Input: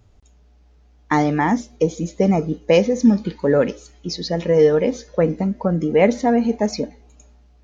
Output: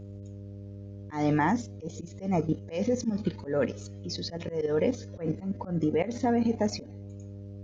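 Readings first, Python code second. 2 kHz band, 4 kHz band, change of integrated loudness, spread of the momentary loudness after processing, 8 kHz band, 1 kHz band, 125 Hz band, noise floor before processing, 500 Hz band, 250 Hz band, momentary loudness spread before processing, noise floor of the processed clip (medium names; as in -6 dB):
-10.5 dB, -9.0 dB, -11.0 dB, 17 LU, no reading, -9.5 dB, -8.0 dB, -53 dBFS, -12.5 dB, -10.0 dB, 9 LU, -43 dBFS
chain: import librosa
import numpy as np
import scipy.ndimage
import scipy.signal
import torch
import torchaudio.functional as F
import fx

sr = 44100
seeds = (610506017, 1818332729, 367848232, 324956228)

y = fx.level_steps(x, sr, step_db=11)
y = fx.dmg_buzz(y, sr, base_hz=100.0, harmonics=6, level_db=-40.0, tilt_db=-7, odd_only=False)
y = fx.auto_swell(y, sr, attack_ms=150.0)
y = y * 10.0 ** (-2.0 / 20.0)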